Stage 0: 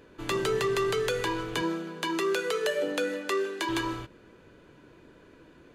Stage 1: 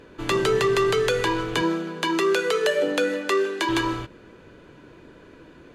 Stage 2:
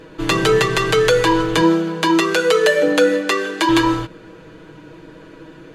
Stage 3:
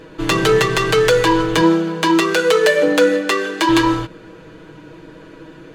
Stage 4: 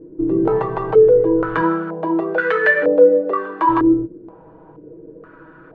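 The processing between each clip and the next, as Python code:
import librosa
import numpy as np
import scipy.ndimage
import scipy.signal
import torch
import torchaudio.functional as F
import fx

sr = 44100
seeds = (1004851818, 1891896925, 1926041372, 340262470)

y1 = fx.high_shelf(x, sr, hz=11000.0, db=-8.5)
y1 = y1 * librosa.db_to_amplitude(6.5)
y2 = y1 + 0.75 * np.pad(y1, (int(6.3 * sr / 1000.0), 0))[:len(y1)]
y2 = y2 * librosa.db_to_amplitude(5.5)
y3 = fx.self_delay(y2, sr, depth_ms=0.061)
y3 = y3 * librosa.db_to_amplitude(1.0)
y4 = fx.filter_held_lowpass(y3, sr, hz=2.1, low_hz=350.0, high_hz=1700.0)
y4 = y4 * librosa.db_to_amplitude(-6.5)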